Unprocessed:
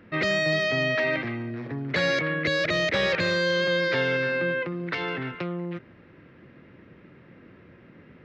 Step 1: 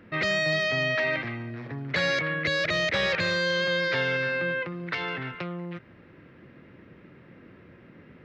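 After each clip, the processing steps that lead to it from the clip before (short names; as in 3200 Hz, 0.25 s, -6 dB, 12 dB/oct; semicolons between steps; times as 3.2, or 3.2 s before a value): dynamic EQ 320 Hz, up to -6 dB, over -42 dBFS, Q 0.87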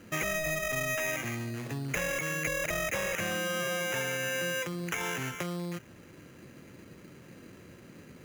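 compressor, threshold -29 dBFS, peak gain reduction 7.5 dB; sample-and-hold 10×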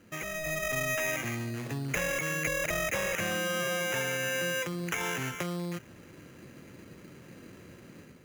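AGC gain up to 7.5 dB; gain -6.5 dB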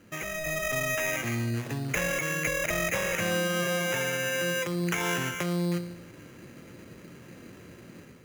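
resonator 58 Hz, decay 0.86 s, harmonics all, mix 60%; gain +8.5 dB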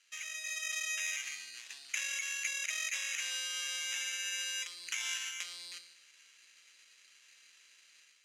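Butterworth band-pass 4900 Hz, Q 0.85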